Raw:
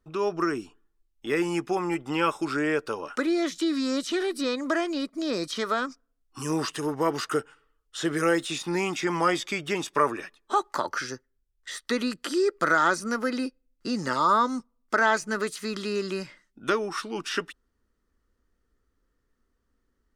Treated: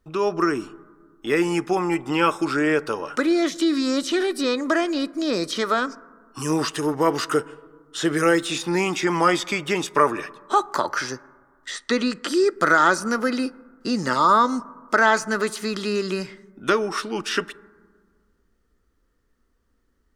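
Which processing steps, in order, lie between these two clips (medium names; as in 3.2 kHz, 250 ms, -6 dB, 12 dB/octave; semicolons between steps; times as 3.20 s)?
11.71–12.28 s: low-pass 8.1 kHz 24 dB/octave; reverberation RT60 1.7 s, pre-delay 8 ms, DRR 18.5 dB; trim +5 dB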